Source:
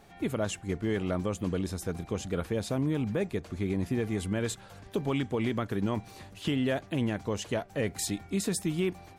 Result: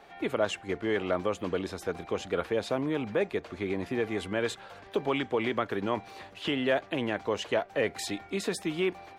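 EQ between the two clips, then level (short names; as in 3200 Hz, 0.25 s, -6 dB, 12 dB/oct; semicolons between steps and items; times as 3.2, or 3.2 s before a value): three-band isolator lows -15 dB, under 340 Hz, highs -14 dB, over 4300 Hz; +5.5 dB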